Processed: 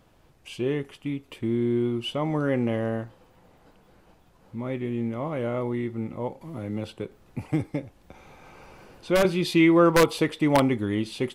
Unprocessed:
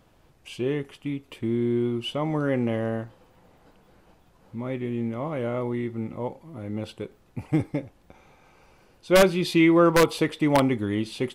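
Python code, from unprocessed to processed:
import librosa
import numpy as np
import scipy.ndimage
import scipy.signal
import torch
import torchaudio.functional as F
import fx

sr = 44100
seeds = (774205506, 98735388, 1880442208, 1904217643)

y = fx.band_squash(x, sr, depth_pct=40, at=(6.41, 9.25))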